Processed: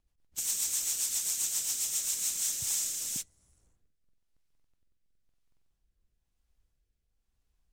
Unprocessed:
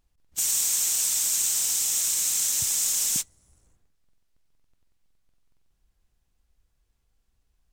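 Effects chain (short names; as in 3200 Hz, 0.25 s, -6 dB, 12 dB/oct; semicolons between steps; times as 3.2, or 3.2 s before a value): rotary speaker horn 7.5 Hz, later 1 Hz, at 2; gain -4.5 dB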